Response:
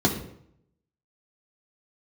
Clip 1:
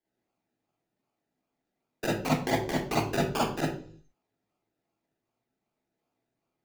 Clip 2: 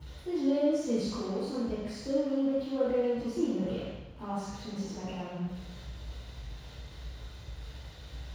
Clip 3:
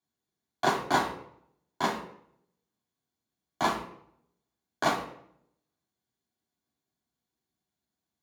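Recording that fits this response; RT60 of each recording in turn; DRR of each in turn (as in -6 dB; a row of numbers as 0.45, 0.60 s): 3; 0.55, 1.1, 0.70 s; -5.5, -11.0, -1.5 dB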